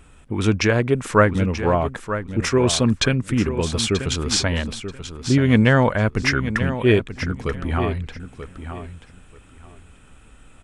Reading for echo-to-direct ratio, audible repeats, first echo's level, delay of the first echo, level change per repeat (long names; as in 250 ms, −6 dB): −10.5 dB, 2, −10.5 dB, 934 ms, −14.5 dB